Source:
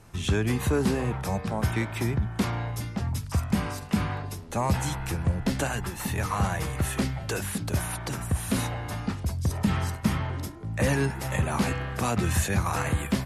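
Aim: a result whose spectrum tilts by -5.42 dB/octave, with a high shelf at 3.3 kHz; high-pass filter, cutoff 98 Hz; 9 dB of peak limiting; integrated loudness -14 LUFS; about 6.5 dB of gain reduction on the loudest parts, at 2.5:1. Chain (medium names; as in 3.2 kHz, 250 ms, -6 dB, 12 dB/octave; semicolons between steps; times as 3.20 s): high-pass 98 Hz; treble shelf 3.3 kHz -5 dB; compression 2.5:1, threshold -30 dBFS; trim +22 dB; peak limiter -4.5 dBFS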